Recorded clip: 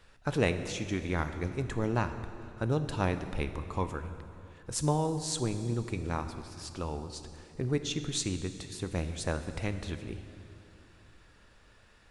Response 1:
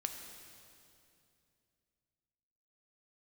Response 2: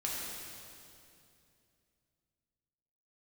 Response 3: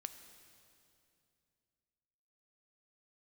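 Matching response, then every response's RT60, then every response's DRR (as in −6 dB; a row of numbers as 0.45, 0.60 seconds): 3; 2.6, 2.6, 2.6 seconds; 4.5, −5.0, 8.5 decibels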